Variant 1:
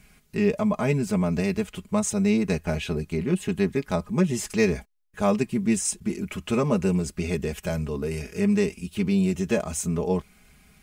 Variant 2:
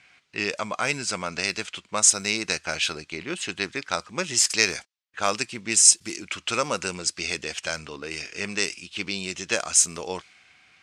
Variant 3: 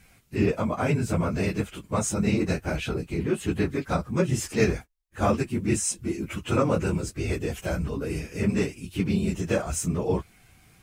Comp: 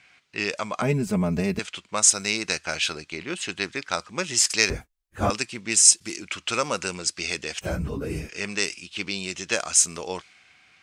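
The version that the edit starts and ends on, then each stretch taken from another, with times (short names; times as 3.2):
2
0.82–1.59 from 1
4.7–5.3 from 3
7.61–8.29 from 3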